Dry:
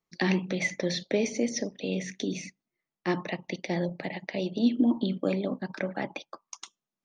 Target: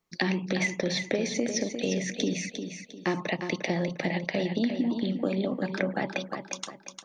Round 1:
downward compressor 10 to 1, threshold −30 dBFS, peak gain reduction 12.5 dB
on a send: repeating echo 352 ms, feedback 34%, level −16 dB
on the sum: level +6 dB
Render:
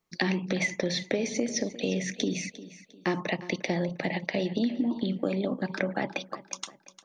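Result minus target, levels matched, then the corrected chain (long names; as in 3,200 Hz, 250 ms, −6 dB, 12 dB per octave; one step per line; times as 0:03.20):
echo-to-direct −8.5 dB
downward compressor 10 to 1, threshold −30 dBFS, peak gain reduction 12.5 dB
on a send: repeating echo 352 ms, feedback 34%, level −7.5 dB
on the sum: level +6 dB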